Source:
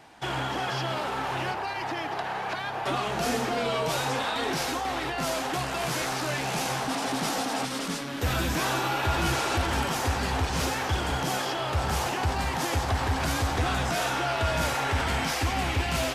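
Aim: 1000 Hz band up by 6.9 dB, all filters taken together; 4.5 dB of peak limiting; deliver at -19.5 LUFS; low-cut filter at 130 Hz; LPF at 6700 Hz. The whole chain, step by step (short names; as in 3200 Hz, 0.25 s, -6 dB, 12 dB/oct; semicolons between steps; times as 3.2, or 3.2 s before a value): HPF 130 Hz; LPF 6700 Hz; bell 1000 Hz +9 dB; gain +6 dB; limiter -10 dBFS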